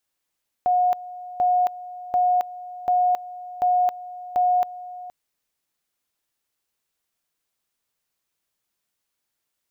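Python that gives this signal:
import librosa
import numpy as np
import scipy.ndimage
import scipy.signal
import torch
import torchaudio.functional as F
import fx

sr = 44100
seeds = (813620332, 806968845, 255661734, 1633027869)

y = fx.two_level_tone(sr, hz=723.0, level_db=-16.0, drop_db=17.5, high_s=0.27, low_s=0.47, rounds=6)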